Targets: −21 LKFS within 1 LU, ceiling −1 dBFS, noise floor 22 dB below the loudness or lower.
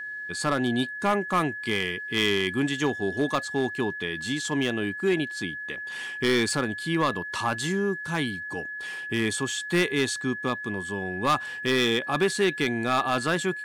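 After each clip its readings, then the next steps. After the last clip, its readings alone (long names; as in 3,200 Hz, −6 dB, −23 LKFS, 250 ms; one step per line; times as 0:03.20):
share of clipped samples 0.9%; peaks flattened at −16.5 dBFS; interfering tone 1,700 Hz; level of the tone −33 dBFS; integrated loudness −26.5 LKFS; sample peak −16.5 dBFS; target loudness −21.0 LKFS
→ clipped peaks rebuilt −16.5 dBFS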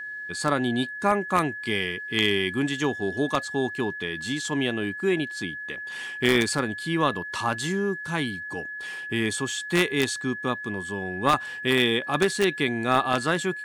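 share of clipped samples 0.0%; interfering tone 1,700 Hz; level of the tone −33 dBFS
→ notch filter 1,700 Hz, Q 30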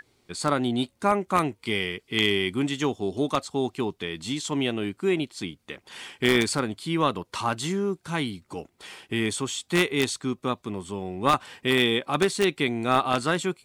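interfering tone none found; integrated loudness −26.0 LKFS; sample peak −7.0 dBFS; target loudness −21.0 LKFS
→ level +5 dB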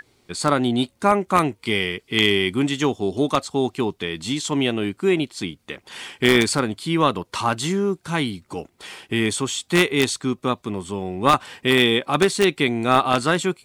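integrated loudness −21.0 LKFS; sample peak −2.0 dBFS; background noise floor −63 dBFS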